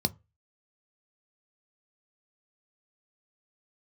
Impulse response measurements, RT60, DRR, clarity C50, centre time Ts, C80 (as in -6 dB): not exponential, 11.0 dB, 26.0 dB, 3 ms, 33.0 dB